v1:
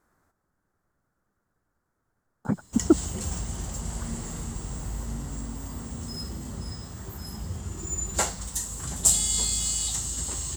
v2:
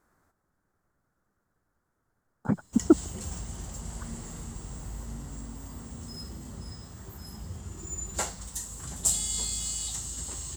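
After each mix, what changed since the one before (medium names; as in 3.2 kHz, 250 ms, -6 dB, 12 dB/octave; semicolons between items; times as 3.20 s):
background -5.5 dB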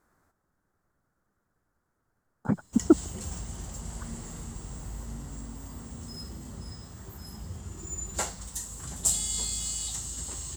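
no change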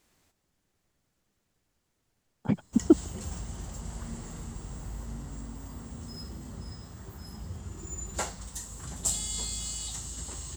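speech: add resonant high shelf 2 kHz +11.5 dB, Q 3; master: add peaking EQ 13 kHz -6 dB 1.5 oct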